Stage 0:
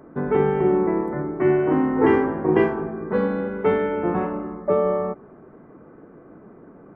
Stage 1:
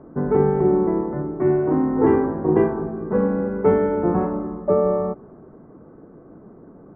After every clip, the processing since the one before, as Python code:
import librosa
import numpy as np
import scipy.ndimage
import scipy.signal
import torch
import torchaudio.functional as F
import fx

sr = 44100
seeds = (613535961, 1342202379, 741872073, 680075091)

y = scipy.signal.sosfilt(scipy.signal.butter(2, 1200.0, 'lowpass', fs=sr, output='sos'), x)
y = fx.low_shelf(y, sr, hz=170.0, db=5.5)
y = fx.rider(y, sr, range_db=10, speed_s=2.0)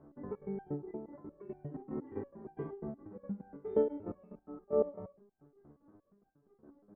y = fx.dynamic_eq(x, sr, hz=1300.0, q=0.92, threshold_db=-35.0, ratio=4.0, max_db=-6)
y = fx.step_gate(y, sr, bpm=181, pattern='x.xx.xx.x.x..', floor_db=-12.0, edge_ms=4.5)
y = fx.resonator_held(y, sr, hz=8.5, low_hz=73.0, high_hz=790.0)
y = y * 10.0 ** (-5.0 / 20.0)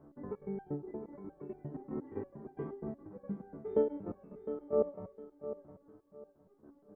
y = fx.echo_feedback(x, sr, ms=708, feedback_pct=27, wet_db=-11.5)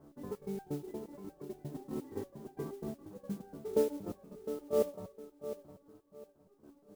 y = fx.mod_noise(x, sr, seeds[0], snr_db=21)